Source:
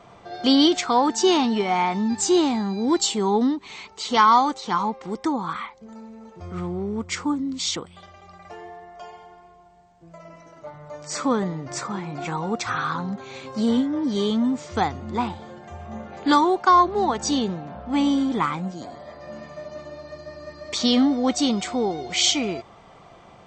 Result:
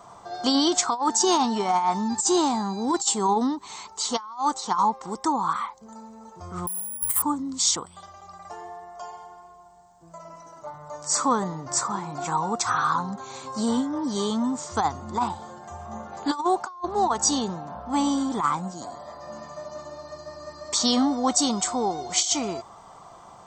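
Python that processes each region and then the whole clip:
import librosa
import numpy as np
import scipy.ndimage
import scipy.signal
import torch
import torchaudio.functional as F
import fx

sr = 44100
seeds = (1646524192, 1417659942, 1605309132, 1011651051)

y = fx.chain(x, sr, fx.lower_of_two(delay_ms=1.0),
    fx.cheby2_lowpass(hz=7100.0, order=4, stop_db=40),
    fx.resample_bad(factor=4, down='filtered', up='zero_stuff'), at=(6.67, 7.22))
y = fx.curve_eq(y, sr, hz=(510.0, 1000.0, 2400.0, 7800.0), db=(0, 11, -5, 15))
y = fx.over_compress(y, sr, threshold_db=-15.0, ratio=-0.5)
y = F.gain(torch.from_numpy(y), -6.5).numpy()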